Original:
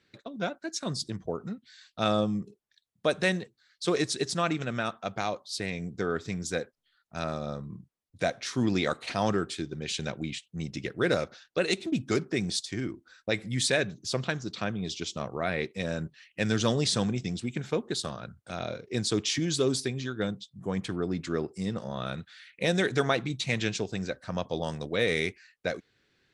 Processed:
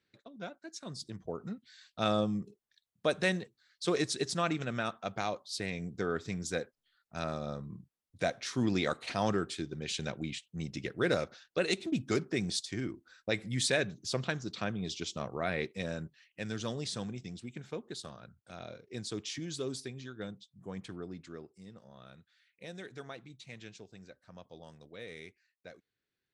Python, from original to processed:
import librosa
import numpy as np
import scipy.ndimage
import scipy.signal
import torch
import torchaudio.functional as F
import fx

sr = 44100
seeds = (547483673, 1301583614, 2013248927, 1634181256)

y = fx.gain(x, sr, db=fx.line((0.88, -11.0), (1.52, -3.5), (15.71, -3.5), (16.45, -11.0), (20.95, -11.0), (21.62, -19.5)))